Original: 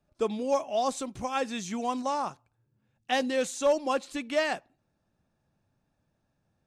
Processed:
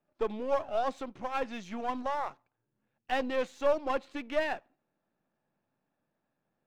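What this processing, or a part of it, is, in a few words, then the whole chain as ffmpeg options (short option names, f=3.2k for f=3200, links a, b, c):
crystal radio: -af "highpass=220,lowpass=2.7k,aeval=exprs='if(lt(val(0),0),0.447*val(0),val(0))':c=same"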